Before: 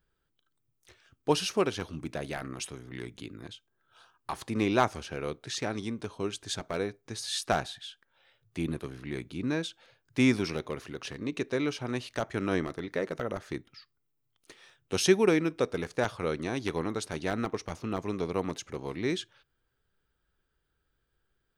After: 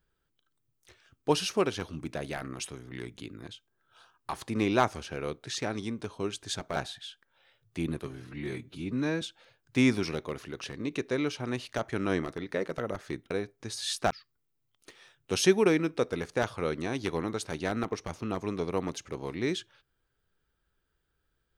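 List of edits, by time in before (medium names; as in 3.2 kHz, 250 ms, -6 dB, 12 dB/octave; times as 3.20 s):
6.76–7.56 s: move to 13.72 s
8.86–9.63 s: stretch 1.5×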